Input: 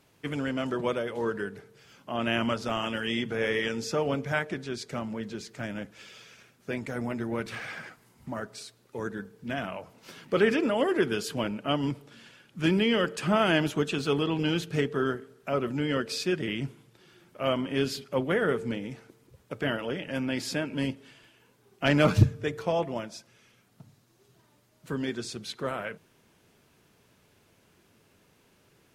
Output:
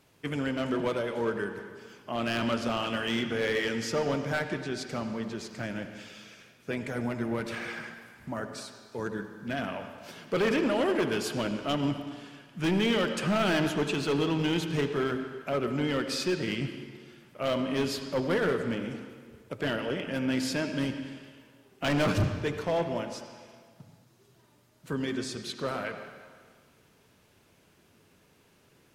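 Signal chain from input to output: hard clip -22.5 dBFS, distortion -10 dB; on a send: reverb RT60 1.7 s, pre-delay 68 ms, DRR 7.5 dB

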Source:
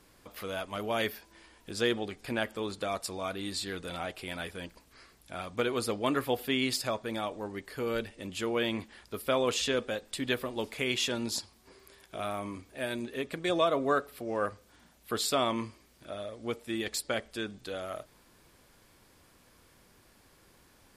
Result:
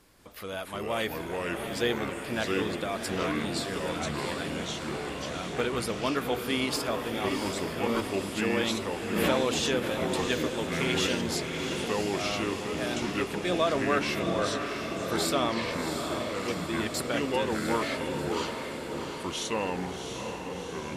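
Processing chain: echoes that change speed 0.197 s, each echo -4 st, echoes 2; diffused feedback echo 0.715 s, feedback 63%, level -6 dB; 9.16–9.92 backwards sustainer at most 30 dB/s

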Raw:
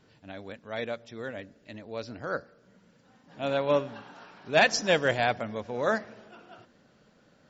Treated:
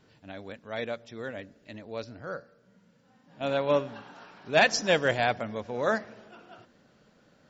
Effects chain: 2.04–3.41 harmonic-percussive split percussive -12 dB

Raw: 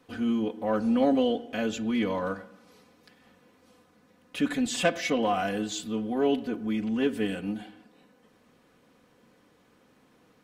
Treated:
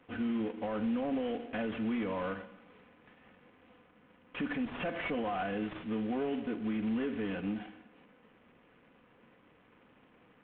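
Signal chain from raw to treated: CVSD 16 kbps; limiter -25 dBFS, peak gain reduction 11 dB; gain -1.5 dB

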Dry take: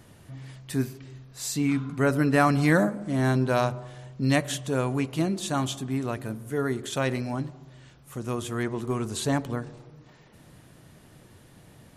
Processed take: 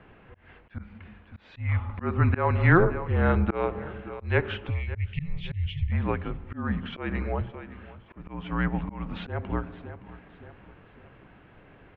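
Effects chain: 4.7–5.91 spectral delete 350–1900 Hz; 4.94–5.9 bell 220 Hz +7.5 dB 2 oct; mistuned SSB -180 Hz 230–2900 Hz; on a send: feedback echo 0.568 s, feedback 44%, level -19 dB; on the sum: auto swell 0.238 s; gain +4.5 dB

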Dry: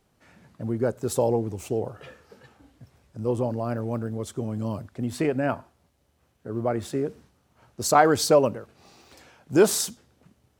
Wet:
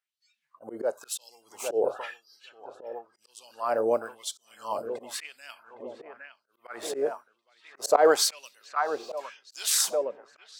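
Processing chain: spectral noise reduction 25 dB; in parallel at -3 dB: compressor, threshold -30 dBFS, peak gain reduction 17 dB; on the sum: dark delay 0.812 s, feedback 59%, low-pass 2400 Hz, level -12 dB; auto swell 0.144 s; LFO high-pass sine 0.97 Hz 460–4400 Hz

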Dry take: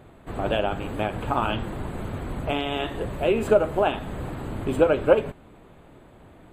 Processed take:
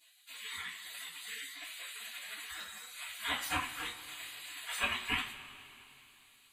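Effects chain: de-hum 112.6 Hz, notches 34; spectral gate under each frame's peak -30 dB weak; two-slope reverb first 0.23 s, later 3.1 s, from -22 dB, DRR -7.5 dB

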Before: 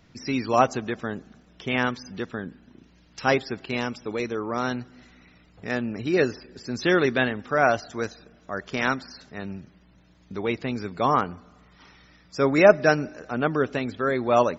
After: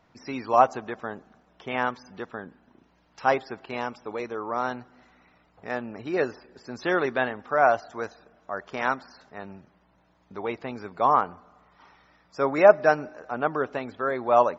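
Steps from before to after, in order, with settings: bell 870 Hz +14.5 dB 2 oct; gain -11 dB

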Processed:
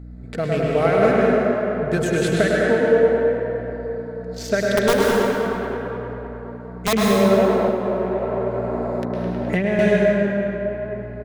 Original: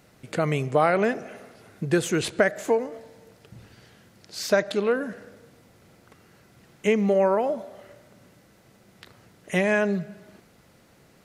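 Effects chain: Wiener smoothing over 15 samples; bell 1000 Hz -9 dB 0.49 oct; comb 4.5 ms, depth 44%; 4.77–6.93 wrapped overs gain 14 dB; hum 60 Hz, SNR 10 dB; tape echo 0.104 s, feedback 90%, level -3.5 dB, low-pass 4300 Hz; plate-style reverb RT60 1.7 s, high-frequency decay 0.75×, pre-delay 0.11 s, DRR -0.5 dB; 7.68–9.79 three-band squash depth 100%

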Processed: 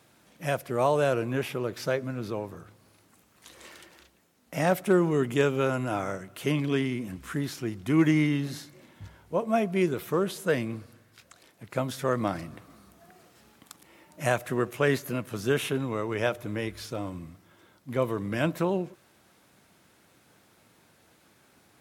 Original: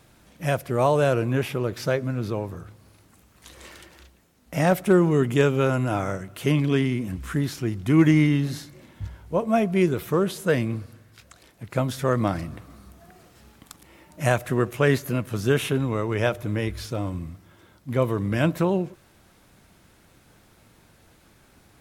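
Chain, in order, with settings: HPF 72 Hz; low shelf 110 Hz -11.5 dB; gain -3 dB

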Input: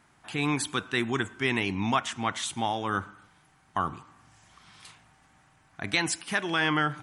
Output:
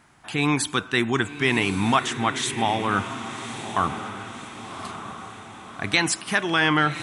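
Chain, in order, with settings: diffused feedback echo 1.138 s, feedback 51%, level -10 dB; gain +5.5 dB

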